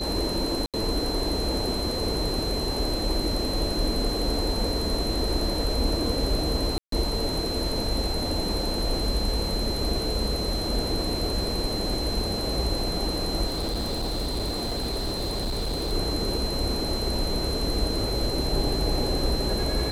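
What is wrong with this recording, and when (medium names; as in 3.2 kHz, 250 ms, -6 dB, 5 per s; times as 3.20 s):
whine 4.1 kHz -31 dBFS
0.66–0.74 s: dropout 77 ms
6.78–6.92 s: dropout 143 ms
13.46–15.93 s: clipped -24.5 dBFS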